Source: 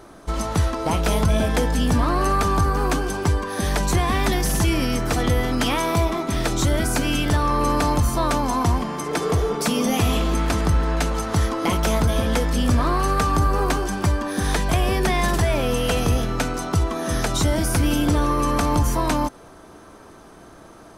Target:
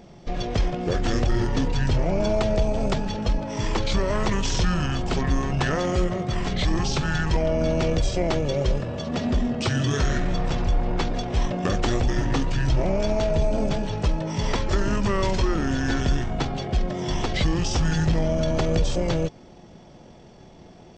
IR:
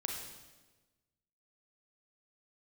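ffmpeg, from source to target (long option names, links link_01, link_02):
-af "asetrate=24046,aresample=44100,atempo=1.83401,volume=-1.5dB"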